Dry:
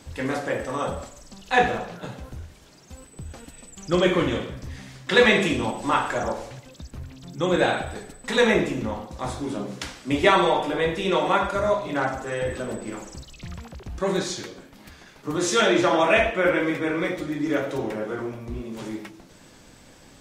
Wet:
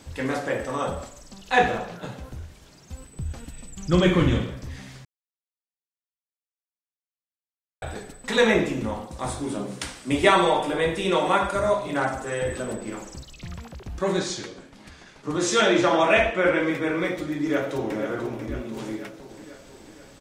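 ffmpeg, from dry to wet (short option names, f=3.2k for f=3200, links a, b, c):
-filter_complex "[0:a]asettb=1/sr,asplit=3[a][b][c];[a]atrim=end=2.384[d];[b]atrim=start=2.38:end=4.49,asetpts=PTS-STARTPTS,afade=t=in:d=0.004:c=qsin,afade=t=out:st=2.106:d=0.004:c=qsin,asubboost=boost=5.5:cutoff=230[e];[c]atrim=start=4.486[f];[d][e]acrossfade=d=0.004:c1=hsin:c2=qsin[g];[g][f]acrossfade=d=0.004:c1=qsin:c2=hsin,asettb=1/sr,asplit=3[h][i][j];[h]atrim=end=8.814[k];[i]atrim=start=8.81:end=12.73,asetpts=PTS-STARTPTS,afade=t=in:d=0.004:c=qsin,afade=t=out:st=3.916:d=0.004:c=qsin,equalizer=f=8.9k:t=o:w=0.28:g=11[l];[j]atrim=start=12.726[m];[k][l]acrossfade=d=0.004:c1=hsin:c2=qsin[n];[n][m]acrossfade=d=0.004:c1=qsin:c2=hsin,asettb=1/sr,asplit=3[o][p][q];[o]atrim=end=14.134[r];[p]atrim=start=14.13:end=16.71,asetpts=PTS-STARTPTS,afade=t=in:d=0.004:c=qsin,afade=t=out:st=2.576:d=0.004:c=qsin,lowpass=f=10k:w=0.5412,lowpass=f=10k:w=1.3066[s];[q]atrim=start=16.706[t];[r][s]acrossfade=d=0.004:c1=hsin:c2=qsin[u];[u][t]acrossfade=d=0.004:c1=qsin:c2=hsin,asplit=2[v][w];[w]afade=t=in:st=17.41:d=0.01,afade=t=out:st=17.97:d=0.01,aecho=0:1:490|980|1470|1960|2450|2940|3430|3920:0.398107|0.238864|0.143319|0.0859911|0.0515947|0.0309568|0.0185741|0.0111445[x];[v][x]amix=inputs=2:normalize=0,asplit=3[y][z][aa];[y]atrim=end=5.05,asetpts=PTS-STARTPTS,afade=t=out:st=5.046:d=0.004:c=hsin[ab];[z]atrim=start=5.05:end=7.82,asetpts=PTS-STARTPTS,volume=0[ac];[aa]atrim=start=7.82,asetpts=PTS-STARTPTS,afade=t=in:d=0.004:c=hsin[ad];[ab][ac][ad]concat=n=3:v=0:a=1"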